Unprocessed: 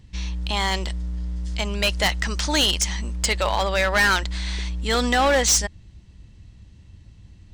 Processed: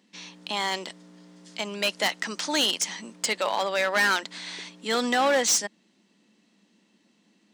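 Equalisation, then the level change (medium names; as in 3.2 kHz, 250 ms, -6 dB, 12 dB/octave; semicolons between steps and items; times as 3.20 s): elliptic high-pass 210 Hz, stop band 50 dB; -3.0 dB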